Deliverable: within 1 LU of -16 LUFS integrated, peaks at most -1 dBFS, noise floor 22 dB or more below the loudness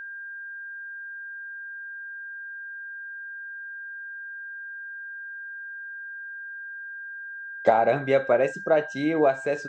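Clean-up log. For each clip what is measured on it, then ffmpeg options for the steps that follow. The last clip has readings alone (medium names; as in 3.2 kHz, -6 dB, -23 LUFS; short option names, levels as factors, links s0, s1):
steady tone 1.6 kHz; tone level -35 dBFS; loudness -29.0 LUFS; peak level -7.0 dBFS; loudness target -16.0 LUFS
-> -af "bandreject=f=1600:w=30"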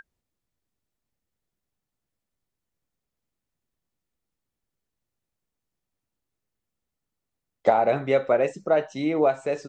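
steady tone not found; loudness -23.0 LUFS; peak level -7.0 dBFS; loudness target -16.0 LUFS
-> -af "volume=2.24,alimiter=limit=0.891:level=0:latency=1"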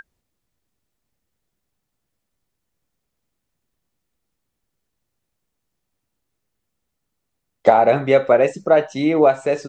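loudness -16.5 LUFS; peak level -1.0 dBFS; noise floor -78 dBFS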